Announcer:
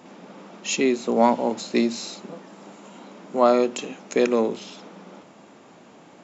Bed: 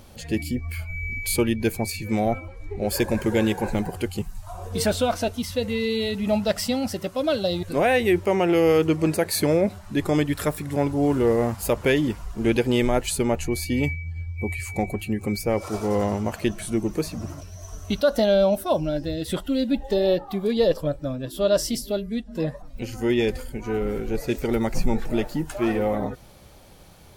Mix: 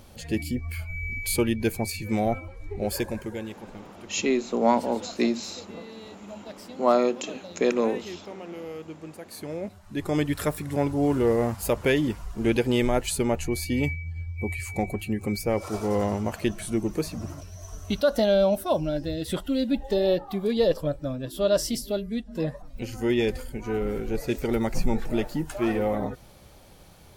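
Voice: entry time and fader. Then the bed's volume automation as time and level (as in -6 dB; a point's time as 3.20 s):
3.45 s, -3.0 dB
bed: 2.83 s -2 dB
3.70 s -19.5 dB
9.20 s -19.5 dB
10.26 s -2 dB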